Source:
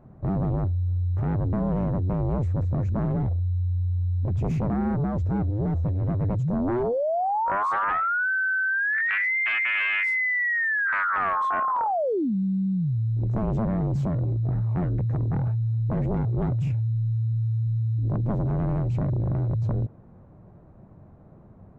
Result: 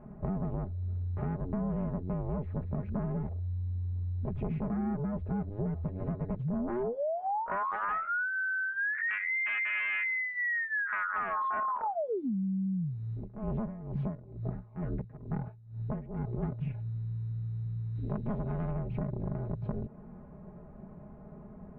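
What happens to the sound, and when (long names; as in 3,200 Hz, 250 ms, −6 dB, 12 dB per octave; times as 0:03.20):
0:13.12–0:16.43: tremolo with a sine in dB 2.2 Hz, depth 20 dB
0:17.95–0:18.71: high-shelf EQ 2,100 Hz +11 dB
whole clip: low-pass filter 2,900 Hz 24 dB per octave; comb filter 4.8 ms, depth 79%; downward compressor, threshold −31 dBFS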